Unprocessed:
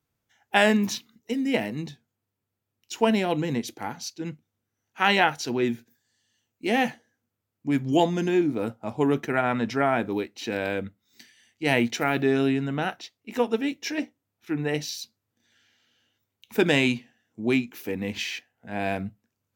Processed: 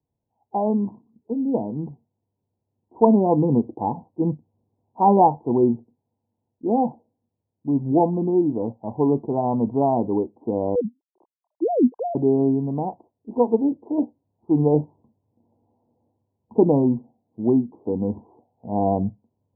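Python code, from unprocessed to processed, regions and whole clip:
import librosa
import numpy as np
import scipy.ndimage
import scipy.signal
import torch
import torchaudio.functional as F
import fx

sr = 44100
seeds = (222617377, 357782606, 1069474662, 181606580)

y = fx.chain(x, sr, fx.sine_speech(),
    fx.notch(hz=1400.0, q=12.0), at=(10.75, 12.15))
y = scipy.signal.sosfilt(scipy.signal.butter(16, 1000.0, 'lowpass', fs=sr, output='sos'), y)
y = fx.dynamic_eq(y, sr, hz=620.0, q=4.5, threshold_db=-42.0, ratio=4.0, max_db=-3)
y = fx.rider(y, sr, range_db=10, speed_s=2.0)
y = F.gain(torch.from_numpy(y), 4.5).numpy()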